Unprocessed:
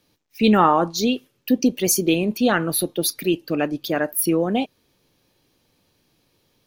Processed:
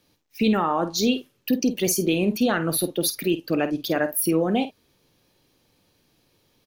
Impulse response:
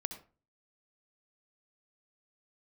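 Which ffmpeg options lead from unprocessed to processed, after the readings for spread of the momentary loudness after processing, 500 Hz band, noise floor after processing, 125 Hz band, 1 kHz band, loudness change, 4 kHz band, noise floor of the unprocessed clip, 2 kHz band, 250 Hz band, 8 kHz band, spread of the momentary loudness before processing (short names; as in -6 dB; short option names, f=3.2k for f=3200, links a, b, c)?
4 LU, -2.5 dB, -67 dBFS, -2.0 dB, -6.0 dB, -3.0 dB, -1.5 dB, -67 dBFS, -2.5 dB, -2.5 dB, -3.0 dB, 8 LU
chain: -filter_complex "[0:a]alimiter=limit=-12.5dB:level=0:latency=1:release=103,asplit=2[a][b];[b]adelay=50,volume=-11.5dB[c];[a][c]amix=inputs=2:normalize=0"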